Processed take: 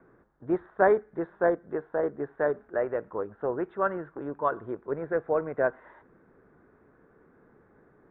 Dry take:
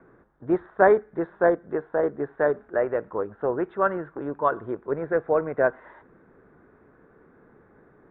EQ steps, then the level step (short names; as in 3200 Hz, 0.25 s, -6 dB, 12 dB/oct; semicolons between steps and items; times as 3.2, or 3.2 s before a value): air absorption 56 m; -4.0 dB